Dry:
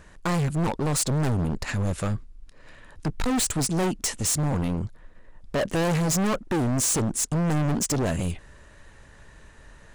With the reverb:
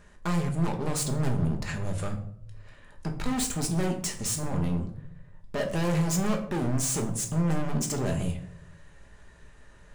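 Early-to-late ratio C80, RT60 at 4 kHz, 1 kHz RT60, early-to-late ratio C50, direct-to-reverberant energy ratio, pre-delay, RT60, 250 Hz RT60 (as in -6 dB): 13.5 dB, 0.40 s, 0.60 s, 9.5 dB, 2.5 dB, 5 ms, 0.70 s, 0.90 s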